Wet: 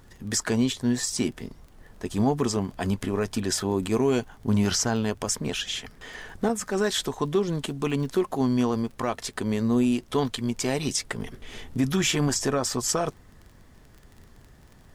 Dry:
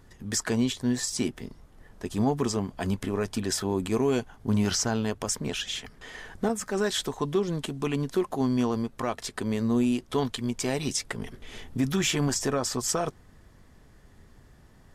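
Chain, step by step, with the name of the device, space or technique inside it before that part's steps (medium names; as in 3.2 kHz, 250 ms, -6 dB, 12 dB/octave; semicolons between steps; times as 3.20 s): vinyl LP (wow and flutter 24 cents; crackle 22 per s -41 dBFS; pink noise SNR 42 dB); trim +2 dB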